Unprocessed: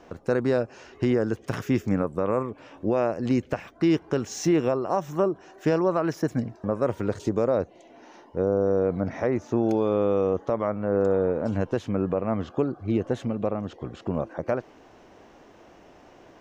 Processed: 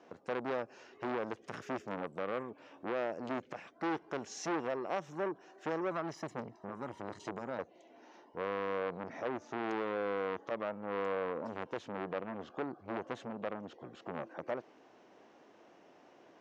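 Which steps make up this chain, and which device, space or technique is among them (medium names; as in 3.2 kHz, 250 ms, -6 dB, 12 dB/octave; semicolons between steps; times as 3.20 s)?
5.91–7.59 s: comb 1 ms, depth 57%; public-address speaker with an overloaded transformer (transformer saturation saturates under 1.1 kHz; band-pass 200–6900 Hz); trim -8.5 dB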